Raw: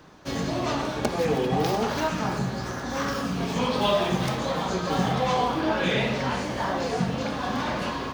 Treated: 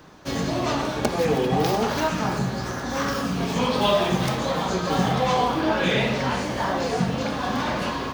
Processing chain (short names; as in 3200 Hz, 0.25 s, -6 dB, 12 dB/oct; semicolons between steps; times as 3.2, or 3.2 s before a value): high shelf 11000 Hz +4 dB; gain +2.5 dB